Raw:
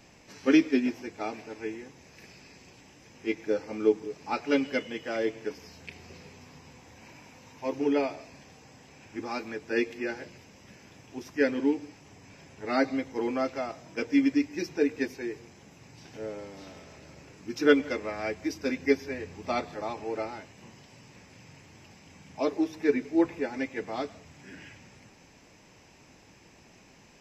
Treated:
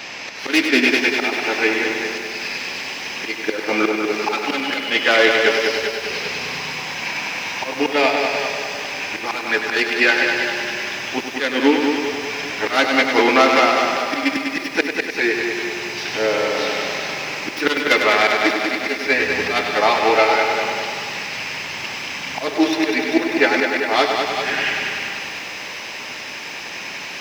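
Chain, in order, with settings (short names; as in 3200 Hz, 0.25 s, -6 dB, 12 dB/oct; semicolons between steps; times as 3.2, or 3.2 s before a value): tracing distortion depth 0.3 ms; differentiator; in parallel at +2.5 dB: compressor, threshold -55 dBFS, peak gain reduction 25.5 dB; on the sum: auto swell 0.245 s; air absorption 290 m; on a send: multi-head echo 99 ms, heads first and second, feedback 61%, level -8 dB; on the sum: maximiser +35.5 dB; lo-fi delay 0.391 s, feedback 35%, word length 6-bit, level -11 dB; gain -1 dB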